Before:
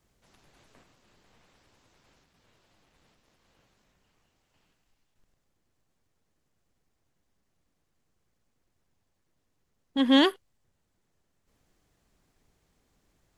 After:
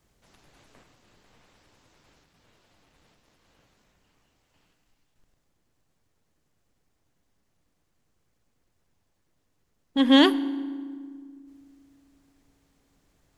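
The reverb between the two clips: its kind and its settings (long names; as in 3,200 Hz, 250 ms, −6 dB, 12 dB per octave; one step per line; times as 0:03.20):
feedback delay network reverb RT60 1.8 s, low-frequency decay 1.6×, high-frequency decay 0.7×, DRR 14.5 dB
level +3 dB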